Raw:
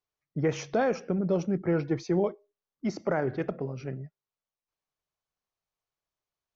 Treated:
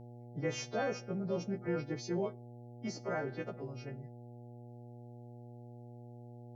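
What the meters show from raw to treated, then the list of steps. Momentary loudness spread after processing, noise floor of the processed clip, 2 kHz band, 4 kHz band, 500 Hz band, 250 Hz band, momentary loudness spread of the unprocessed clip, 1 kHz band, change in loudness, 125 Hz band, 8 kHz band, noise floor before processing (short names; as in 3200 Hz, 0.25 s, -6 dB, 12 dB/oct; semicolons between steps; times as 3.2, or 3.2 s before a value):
15 LU, -51 dBFS, -5.5 dB, -0.5 dB, -8.5 dB, -9.5 dB, 10 LU, -7.5 dB, -9.0 dB, -7.5 dB, n/a, under -85 dBFS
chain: frequency quantiser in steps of 2 st; buzz 120 Hz, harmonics 7, -42 dBFS -6 dB/oct; gain -8.5 dB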